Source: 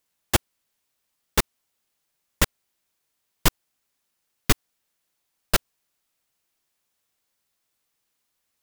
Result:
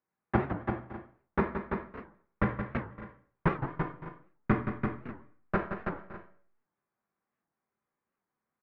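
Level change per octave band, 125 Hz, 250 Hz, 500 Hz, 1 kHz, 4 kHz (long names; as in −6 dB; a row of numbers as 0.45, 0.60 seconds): −1.0 dB, +2.0 dB, −0.5 dB, −1.0 dB, below −25 dB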